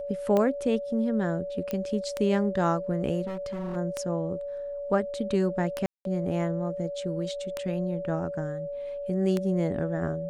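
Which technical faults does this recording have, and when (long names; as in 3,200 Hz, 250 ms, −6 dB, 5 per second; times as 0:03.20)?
scratch tick 33 1/3 rpm −14 dBFS
whistle 570 Hz −32 dBFS
0:01.71: click −18 dBFS
0:03.26–0:03.77: clipping −30 dBFS
0:05.86–0:06.05: drop-out 192 ms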